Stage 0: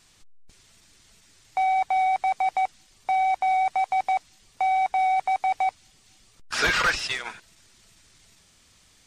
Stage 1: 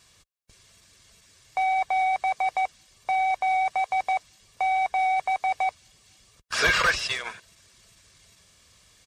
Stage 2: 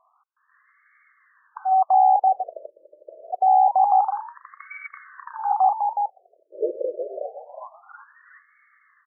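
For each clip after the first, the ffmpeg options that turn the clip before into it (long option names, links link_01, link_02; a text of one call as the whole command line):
ffmpeg -i in.wav -af "highpass=42,aecho=1:1:1.8:0.39" out.wav
ffmpeg -i in.wav -filter_complex "[0:a]asplit=5[link_01][link_02][link_03][link_04][link_05];[link_02]adelay=366,afreqshift=63,volume=-5.5dB[link_06];[link_03]adelay=732,afreqshift=126,volume=-16dB[link_07];[link_04]adelay=1098,afreqshift=189,volume=-26.4dB[link_08];[link_05]adelay=1464,afreqshift=252,volume=-36.9dB[link_09];[link_01][link_06][link_07][link_08][link_09]amix=inputs=5:normalize=0,afftfilt=real='re*between(b*sr/1024,440*pow(1600/440,0.5+0.5*sin(2*PI*0.26*pts/sr))/1.41,440*pow(1600/440,0.5+0.5*sin(2*PI*0.26*pts/sr))*1.41)':imag='im*between(b*sr/1024,440*pow(1600/440,0.5+0.5*sin(2*PI*0.26*pts/sr))/1.41,440*pow(1600/440,0.5+0.5*sin(2*PI*0.26*pts/sr))*1.41)':win_size=1024:overlap=0.75,volume=7.5dB" out.wav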